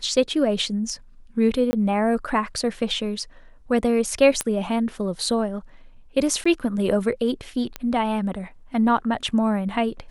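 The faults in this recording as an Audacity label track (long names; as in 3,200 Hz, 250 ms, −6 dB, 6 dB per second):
1.710000	1.730000	drop-out 20 ms
4.410000	4.410000	click −7 dBFS
6.440000	6.460000	drop-out 15 ms
7.760000	7.760000	click −14 dBFS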